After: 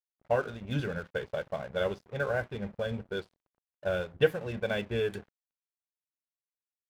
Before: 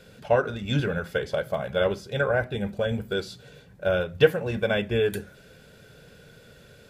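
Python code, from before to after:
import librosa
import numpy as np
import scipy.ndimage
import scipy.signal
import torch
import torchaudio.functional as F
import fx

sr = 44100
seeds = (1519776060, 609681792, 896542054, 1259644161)

y = fx.env_lowpass(x, sr, base_hz=370.0, full_db=-19.0)
y = np.sign(y) * np.maximum(np.abs(y) - 10.0 ** (-42.5 / 20.0), 0.0)
y = y * librosa.db_to_amplitude(-6.0)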